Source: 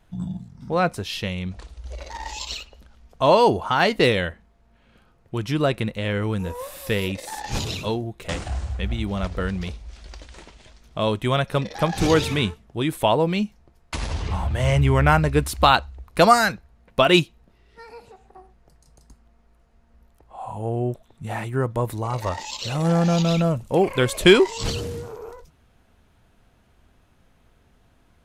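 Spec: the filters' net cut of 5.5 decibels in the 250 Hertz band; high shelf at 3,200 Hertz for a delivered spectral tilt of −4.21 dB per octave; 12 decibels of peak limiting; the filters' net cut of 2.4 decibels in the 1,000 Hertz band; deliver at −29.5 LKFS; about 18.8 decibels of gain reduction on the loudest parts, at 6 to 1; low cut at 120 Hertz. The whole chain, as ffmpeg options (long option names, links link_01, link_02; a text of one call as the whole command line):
ffmpeg -i in.wav -af "highpass=120,equalizer=frequency=250:width_type=o:gain=-8.5,equalizer=frequency=1000:width_type=o:gain=-3.5,highshelf=frequency=3200:gain=8,acompressor=threshold=-32dB:ratio=6,volume=9dB,alimiter=limit=-18dB:level=0:latency=1" out.wav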